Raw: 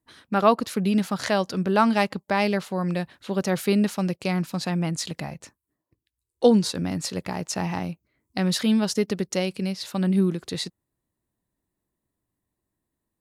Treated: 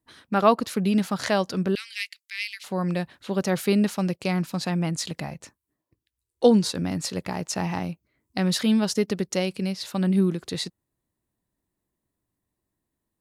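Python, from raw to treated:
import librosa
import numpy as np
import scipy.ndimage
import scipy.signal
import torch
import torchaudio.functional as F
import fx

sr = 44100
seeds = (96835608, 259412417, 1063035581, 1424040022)

y = fx.ellip_highpass(x, sr, hz=2100.0, order=4, stop_db=70, at=(1.75, 2.64))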